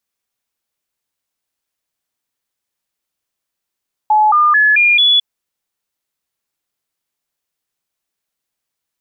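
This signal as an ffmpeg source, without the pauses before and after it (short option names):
-f lavfi -i "aevalsrc='0.422*clip(min(mod(t,0.22),0.22-mod(t,0.22))/0.005,0,1)*sin(2*PI*854*pow(2,floor(t/0.22)/2)*mod(t,0.22))':d=1.1:s=44100"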